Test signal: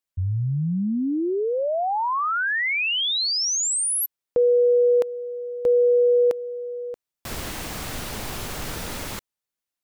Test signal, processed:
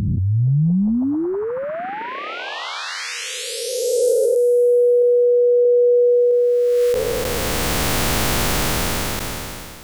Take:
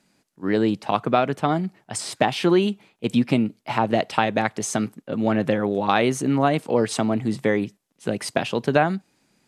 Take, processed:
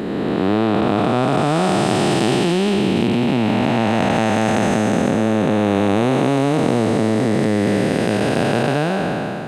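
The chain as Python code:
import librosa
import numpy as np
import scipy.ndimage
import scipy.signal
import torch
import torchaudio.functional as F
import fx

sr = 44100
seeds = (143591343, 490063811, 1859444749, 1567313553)

p1 = fx.spec_blur(x, sr, span_ms=1100.0)
p2 = fx.over_compress(p1, sr, threshold_db=-30.0, ratio=-0.5)
p3 = p1 + (p2 * 10.0 ** (-1.0 / 20.0))
y = p3 * 10.0 ** (7.0 / 20.0)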